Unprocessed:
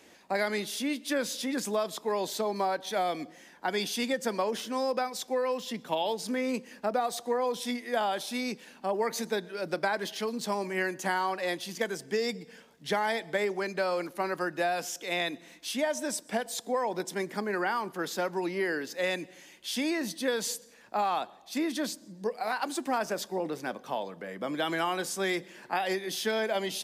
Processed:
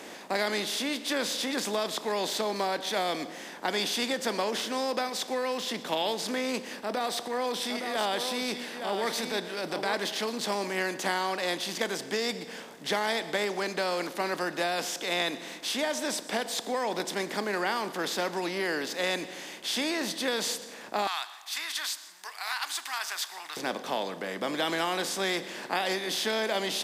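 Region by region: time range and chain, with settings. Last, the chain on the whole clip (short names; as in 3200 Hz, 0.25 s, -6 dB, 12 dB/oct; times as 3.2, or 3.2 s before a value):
6.75–9.94 notch 6700 Hz, Q 7.6 + transient shaper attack -8 dB, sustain 0 dB + echo 0.864 s -10.5 dB
21.07–23.57 inverse Chebyshev high-pass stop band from 560 Hz + high shelf 11000 Hz +10 dB
whole clip: per-bin compression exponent 0.6; dynamic EQ 4000 Hz, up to +6 dB, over -47 dBFS, Q 1.1; gain -4 dB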